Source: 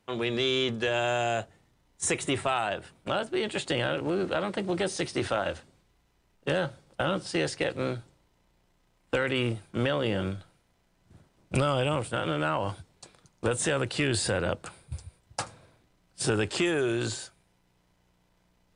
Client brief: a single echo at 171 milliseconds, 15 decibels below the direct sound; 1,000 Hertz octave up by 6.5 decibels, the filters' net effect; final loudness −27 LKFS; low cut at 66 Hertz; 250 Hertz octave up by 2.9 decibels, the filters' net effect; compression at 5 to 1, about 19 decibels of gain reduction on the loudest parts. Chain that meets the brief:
high-pass filter 66 Hz
parametric band 250 Hz +3.5 dB
parametric band 1,000 Hz +9 dB
downward compressor 5 to 1, threshold −41 dBFS
single-tap delay 171 ms −15 dB
level +16.5 dB

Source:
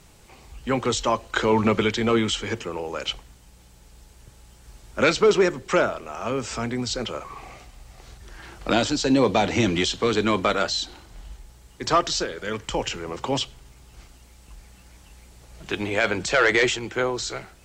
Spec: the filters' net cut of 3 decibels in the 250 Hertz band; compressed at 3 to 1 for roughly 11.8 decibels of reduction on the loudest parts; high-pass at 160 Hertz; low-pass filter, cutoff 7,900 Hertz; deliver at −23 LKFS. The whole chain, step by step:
high-pass filter 160 Hz
low-pass filter 7,900 Hz
parametric band 250 Hz −3 dB
downward compressor 3 to 1, threshold −31 dBFS
level +10 dB

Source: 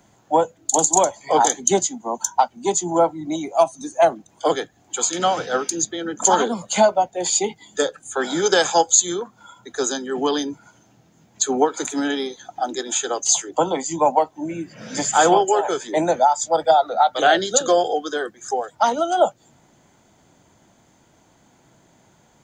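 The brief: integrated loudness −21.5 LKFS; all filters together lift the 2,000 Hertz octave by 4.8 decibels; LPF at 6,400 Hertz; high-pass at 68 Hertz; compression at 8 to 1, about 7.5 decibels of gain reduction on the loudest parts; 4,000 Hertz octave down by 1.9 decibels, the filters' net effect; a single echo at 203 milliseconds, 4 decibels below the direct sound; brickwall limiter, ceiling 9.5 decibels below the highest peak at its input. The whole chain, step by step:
high-pass filter 68 Hz
low-pass filter 6,400 Hz
parametric band 2,000 Hz +7.5 dB
parametric band 4,000 Hz −4.5 dB
downward compressor 8 to 1, threshold −17 dBFS
brickwall limiter −17 dBFS
single-tap delay 203 ms −4 dB
level +4.5 dB

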